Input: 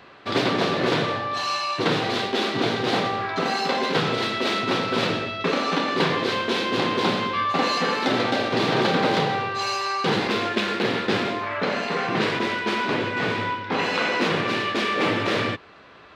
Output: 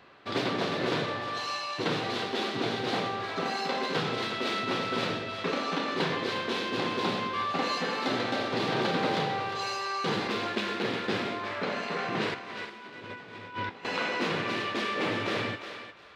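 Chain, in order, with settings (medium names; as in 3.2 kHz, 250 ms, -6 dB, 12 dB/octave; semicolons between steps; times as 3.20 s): 12.34–13.85 s: compressor with a negative ratio -32 dBFS, ratio -0.5; on a send: thinning echo 355 ms, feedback 22%, high-pass 550 Hz, level -8.5 dB; on the sum: trim -7.5 dB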